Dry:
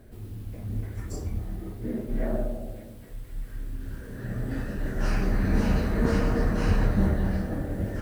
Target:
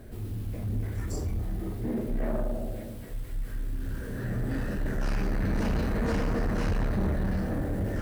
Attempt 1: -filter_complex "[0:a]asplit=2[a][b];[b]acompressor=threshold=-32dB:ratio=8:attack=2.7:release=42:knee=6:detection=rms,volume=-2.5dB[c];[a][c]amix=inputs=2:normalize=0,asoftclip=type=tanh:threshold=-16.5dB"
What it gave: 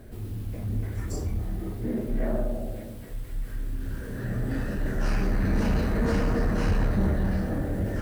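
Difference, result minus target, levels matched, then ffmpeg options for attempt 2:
soft clip: distortion -7 dB
-filter_complex "[0:a]asplit=2[a][b];[b]acompressor=threshold=-32dB:ratio=8:attack=2.7:release=42:knee=6:detection=rms,volume=-2.5dB[c];[a][c]amix=inputs=2:normalize=0,asoftclip=type=tanh:threshold=-23dB"

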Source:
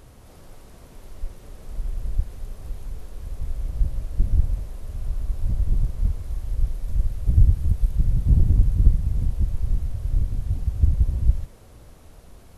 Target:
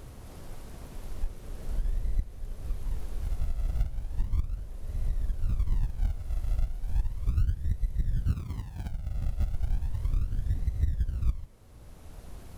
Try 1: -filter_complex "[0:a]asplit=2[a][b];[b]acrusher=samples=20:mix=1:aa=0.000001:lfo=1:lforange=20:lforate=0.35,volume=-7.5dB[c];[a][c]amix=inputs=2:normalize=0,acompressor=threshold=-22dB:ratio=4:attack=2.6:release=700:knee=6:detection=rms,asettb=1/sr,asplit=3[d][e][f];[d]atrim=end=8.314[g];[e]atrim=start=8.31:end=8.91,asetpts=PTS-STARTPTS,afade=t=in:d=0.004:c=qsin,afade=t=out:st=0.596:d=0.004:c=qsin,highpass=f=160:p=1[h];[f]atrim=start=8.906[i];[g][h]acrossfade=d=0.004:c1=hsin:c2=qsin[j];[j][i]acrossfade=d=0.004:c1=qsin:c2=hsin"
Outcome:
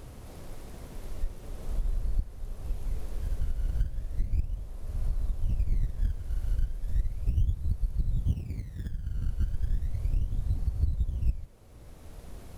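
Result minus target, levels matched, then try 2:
decimation with a swept rate: distortion -7 dB
-filter_complex "[0:a]asplit=2[a][b];[b]acrusher=samples=44:mix=1:aa=0.000001:lfo=1:lforange=44:lforate=0.35,volume=-7.5dB[c];[a][c]amix=inputs=2:normalize=0,acompressor=threshold=-22dB:ratio=4:attack=2.6:release=700:knee=6:detection=rms,asettb=1/sr,asplit=3[d][e][f];[d]atrim=end=8.314[g];[e]atrim=start=8.31:end=8.91,asetpts=PTS-STARTPTS,afade=t=in:d=0.004:c=qsin,afade=t=out:st=0.596:d=0.004:c=qsin,highpass=f=160:p=1[h];[f]atrim=start=8.906[i];[g][h]acrossfade=d=0.004:c1=hsin:c2=qsin[j];[j][i]acrossfade=d=0.004:c1=qsin:c2=hsin"

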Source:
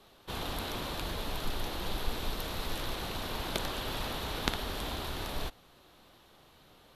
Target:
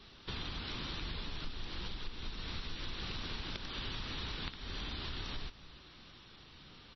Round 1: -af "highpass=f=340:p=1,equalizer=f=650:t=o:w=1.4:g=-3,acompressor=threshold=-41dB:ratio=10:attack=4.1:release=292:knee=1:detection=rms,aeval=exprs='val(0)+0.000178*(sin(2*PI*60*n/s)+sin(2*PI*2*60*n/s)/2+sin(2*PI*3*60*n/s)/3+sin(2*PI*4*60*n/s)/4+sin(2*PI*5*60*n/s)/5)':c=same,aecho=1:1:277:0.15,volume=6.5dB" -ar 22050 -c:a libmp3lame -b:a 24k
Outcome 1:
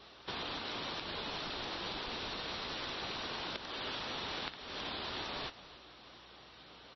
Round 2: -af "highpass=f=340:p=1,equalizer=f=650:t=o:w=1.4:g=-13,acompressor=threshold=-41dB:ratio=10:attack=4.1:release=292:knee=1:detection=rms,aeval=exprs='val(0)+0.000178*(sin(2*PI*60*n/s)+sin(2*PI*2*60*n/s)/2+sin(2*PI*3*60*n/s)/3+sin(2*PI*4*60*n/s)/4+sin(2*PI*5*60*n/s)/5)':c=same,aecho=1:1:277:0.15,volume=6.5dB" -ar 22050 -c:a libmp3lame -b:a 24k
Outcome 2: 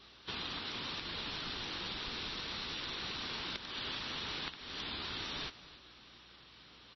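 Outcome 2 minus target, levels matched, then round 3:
250 Hz band -3.5 dB
-af "equalizer=f=650:t=o:w=1.4:g=-13,acompressor=threshold=-41dB:ratio=10:attack=4.1:release=292:knee=1:detection=rms,aeval=exprs='val(0)+0.000178*(sin(2*PI*60*n/s)+sin(2*PI*2*60*n/s)/2+sin(2*PI*3*60*n/s)/3+sin(2*PI*4*60*n/s)/4+sin(2*PI*5*60*n/s)/5)':c=same,aecho=1:1:277:0.15,volume=6.5dB" -ar 22050 -c:a libmp3lame -b:a 24k

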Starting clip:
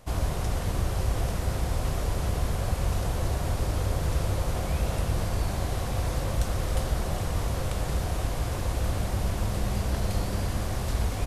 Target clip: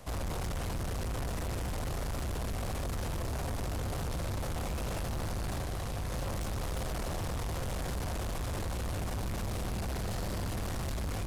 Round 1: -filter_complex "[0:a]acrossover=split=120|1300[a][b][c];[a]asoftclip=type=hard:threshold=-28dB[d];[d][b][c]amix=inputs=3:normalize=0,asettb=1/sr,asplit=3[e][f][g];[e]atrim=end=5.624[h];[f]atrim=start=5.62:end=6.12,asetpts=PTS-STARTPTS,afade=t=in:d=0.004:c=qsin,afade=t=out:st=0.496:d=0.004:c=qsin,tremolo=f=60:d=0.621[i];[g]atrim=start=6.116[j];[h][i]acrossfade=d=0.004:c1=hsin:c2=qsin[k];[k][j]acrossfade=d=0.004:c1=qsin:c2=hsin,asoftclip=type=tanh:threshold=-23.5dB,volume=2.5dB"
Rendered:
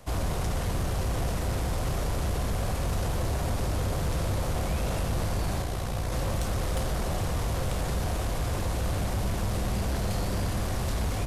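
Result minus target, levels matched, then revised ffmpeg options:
soft clip: distortion -11 dB
-filter_complex "[0:a]acrossover=split=120|1300[a][b][c];[a]asoftclip=type=hard:threshold=-28dB[d];[d][b][c]amix=inputs=3:normalize=0,asettb=1/sr,asplit=3[e][f][g];[e]atrim=end=5.624[h];[f]atrim=start=5.62:end=6.12,asetpts=PTS-STARTPTS,afade=t=in:d=0.004:c=qsin,afade=t=out:st=0.496:d=0.004:c=qsin,tremolo=f=60:d=0.621[i];[g]atrim=start=6.116[j];[h][i]acrossfade=d=0.004:c1=hsin:c2=qsin[k];[k][j]acrossfade=d=0.004:c1=qsin:c2=hsin,asoftclip=type=tanh:threshold=-35dB,volume=2.5dB"

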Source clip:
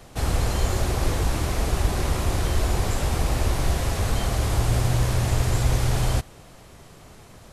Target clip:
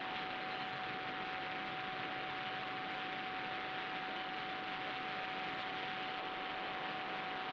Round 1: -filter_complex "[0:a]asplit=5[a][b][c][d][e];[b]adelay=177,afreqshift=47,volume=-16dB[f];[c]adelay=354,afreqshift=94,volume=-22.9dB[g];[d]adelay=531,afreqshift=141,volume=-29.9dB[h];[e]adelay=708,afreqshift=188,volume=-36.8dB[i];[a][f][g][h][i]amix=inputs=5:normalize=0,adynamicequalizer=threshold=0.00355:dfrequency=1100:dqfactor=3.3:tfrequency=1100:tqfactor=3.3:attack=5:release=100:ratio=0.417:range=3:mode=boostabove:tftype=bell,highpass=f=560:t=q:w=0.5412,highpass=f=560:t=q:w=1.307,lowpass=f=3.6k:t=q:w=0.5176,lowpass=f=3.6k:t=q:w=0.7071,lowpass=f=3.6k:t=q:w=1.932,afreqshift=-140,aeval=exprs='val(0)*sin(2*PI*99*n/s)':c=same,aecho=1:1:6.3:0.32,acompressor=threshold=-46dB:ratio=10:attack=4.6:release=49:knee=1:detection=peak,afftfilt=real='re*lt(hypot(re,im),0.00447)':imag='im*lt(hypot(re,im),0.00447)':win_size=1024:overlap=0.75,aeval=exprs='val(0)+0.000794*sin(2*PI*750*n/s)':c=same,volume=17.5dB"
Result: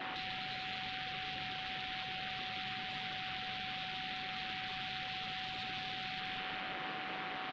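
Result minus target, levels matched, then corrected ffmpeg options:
compressor: peak gain reduction -7.5 dB
-filter_complex "[0:a]asplit=5[a][b][c][d][e];[b]adelay=177,afreqshift=47,volume=-16dB[f];[c]adelay=354,afreqshift=94,volume=-22.9dB[g];[d]adelay=531,afreqshift=141,volume=-29.9dB[h];[e]adelay=708,afreqshift=188,volume=-36.8dB[i];[a][f][g][h][i]amix=inputs=5:normalize=0,adynamicequalizer=threshold=0.00355:dfrequency=1100:dqfactor=3.3:tfrequency=1100:tqfactor=3.3:attack=5:release=100:ratio=0.417:range=3:mode=boostabove:tftype=bell,highpass=f=560:t=q:w=0.5412,highpass=f=560:t=q:w=1.307,lowpass=f=3.6k:t=q:w=0.5176,lowpass=f=3.6k:t=q:w=0.7071,lowpass=f=3.6k:t=q:w=1.932,afreqshift=-140,aeval=exprs='val(0)*sin(2*PI*99*n/s)':c=same,aecho=1:1:6.3:0.32,acompressor=threshold=-54.5dB:ratio=10:attack=4.6:release=49:knee=1:detection=peak,afftfilt=real='re*lt(hypot(re,im),0.00447)':imag='im*lt(hypot(re,im),0.00447)':win_size=1024:overlap=0.75,aeval=exprs='val(0)+0.000794*sin(2*PI*750*n/s)':c=same,volume=17.5dB"

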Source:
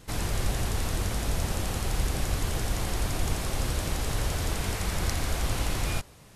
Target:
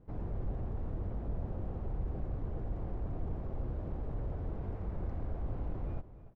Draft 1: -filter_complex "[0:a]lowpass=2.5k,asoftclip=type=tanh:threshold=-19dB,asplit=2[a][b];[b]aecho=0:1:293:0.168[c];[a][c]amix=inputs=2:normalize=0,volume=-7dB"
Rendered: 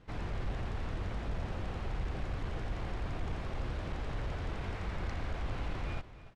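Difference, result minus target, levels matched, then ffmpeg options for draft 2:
2000 Hz band +16.0 dB
-filter_complex "[0:a]lowpass=630,asoftclip=type=tanh:threshold=-19dB,asplit=2[a][b];[b]aecho=0:1:293:0.168[c];[a][c]amix=inputs=2:normalize=0,volume=-7dB"

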